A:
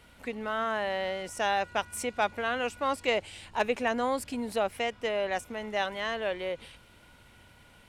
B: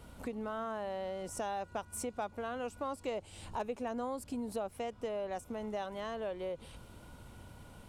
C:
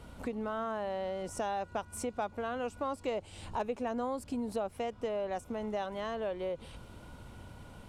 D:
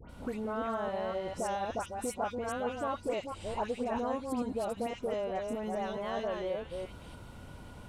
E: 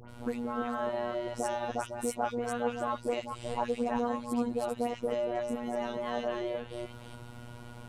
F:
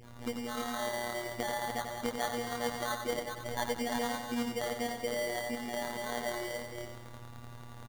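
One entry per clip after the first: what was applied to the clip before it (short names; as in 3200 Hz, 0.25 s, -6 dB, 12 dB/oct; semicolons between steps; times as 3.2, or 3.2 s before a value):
EQ curve 140 Hz 0 dB, 1200 Hz -5 dB, 1900 Hz -15 dB, 7900 Hz -5 dB; compressor 3:1, threshold -46 dBFS, peak gain reduction 14.5 dB; gain +7 dB
high shelf 9100 Hz -9 dB; gain +3 dB
reverse delay 0.221 s, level -3.5 dB; dispersion highs, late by 95 ms, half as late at 1700 Hz
robotiser 120 Hz; gain +4 dB
sample-rate reducer 2600 Hz, jitter 0%; on a send: feedback echo 93 ms, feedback 49%, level -6.5 dB; on the sum: gain -3 dB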